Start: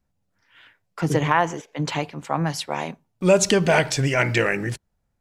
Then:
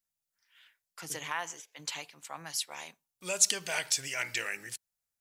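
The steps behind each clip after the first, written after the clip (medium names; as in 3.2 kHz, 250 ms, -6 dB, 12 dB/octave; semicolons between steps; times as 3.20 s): pre-emphasis filter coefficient 0.97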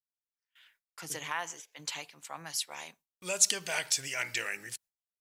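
gate with hold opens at -54 dBFS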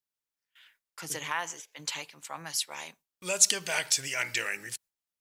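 band-stop 720 Hz, Q 17; trim +3 dB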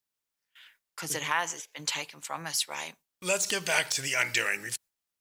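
de-esser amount 50%; trim +4 dB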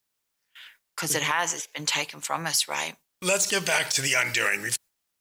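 peak limiter -19.5 dBFS, peak gain reduction 10 dB; trim +7.5 dB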